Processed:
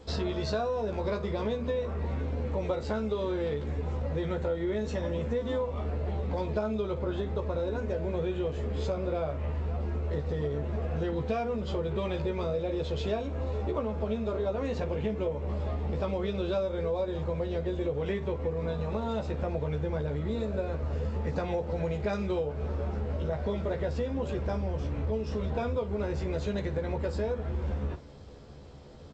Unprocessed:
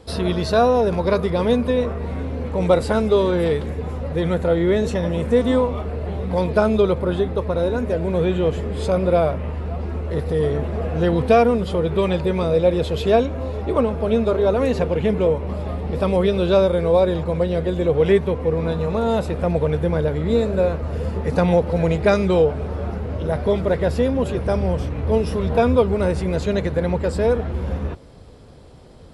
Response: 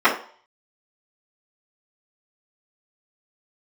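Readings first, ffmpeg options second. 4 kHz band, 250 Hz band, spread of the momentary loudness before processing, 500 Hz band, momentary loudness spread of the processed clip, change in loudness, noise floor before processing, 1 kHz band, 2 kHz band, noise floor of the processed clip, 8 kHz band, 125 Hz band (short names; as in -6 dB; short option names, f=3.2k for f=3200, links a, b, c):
-11.0 dB, -12.5 dB, 9 LU, -13.0 dB, 2 LU, -12.0 dB, -28 dBFS, -13.0 dB, -12.0 dB, -37 dBFS, n/a, -9.0 dB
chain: -filter_complex "[0:a]aecho=1:1:14|55:0.668|0.168,acompressor=threshold=-22dB:ratio=6,asplit=2[a][b];[1:a]atrim=start_sample=2205[c];[b][c]afir=irnorm=-1:irlink=0,volume=-40.5dB[d];[a][d]amix=inputs=2:normalize=0,volume=-6dB" -ar 16000 -c:a g722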